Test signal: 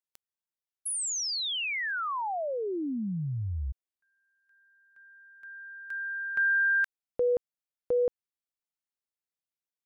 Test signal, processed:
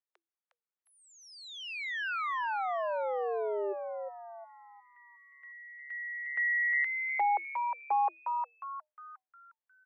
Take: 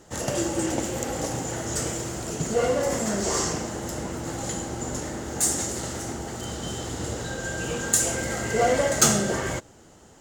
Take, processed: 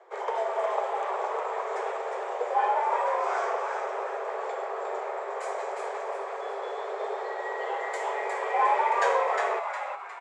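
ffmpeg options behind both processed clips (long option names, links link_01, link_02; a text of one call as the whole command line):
ffmpeg -i in.wav -filter_complex "[0:a]lowpass=1700,afreqshift=330,asplit=2[link_01][link_02];[link_02]asplit=5[link_03][link_04][link_05][link_06][link_07];[link_03]adelay=358,afreqshift=140,volume=-5dB[link_08];[link_04]adelay=716,afreqshift=280,volume=-13.2dB[link_09];[link_05]adelay=1074,afreqshift=420,volume=-21.4dB[link_10];[link_06]adelay=1432,afreqshift=560,volume=-29.5dB[link_11];[link_07]adelay=1790,afreqshift=700,volume=-37.7dB[link_12];[link_08][link_09][link_10][link_11][link_12]amix=inputs=5:normalize=0[link_13];[link_01][link_13]amix=inputs=2:normalize=0,volume=-2dB" out.wav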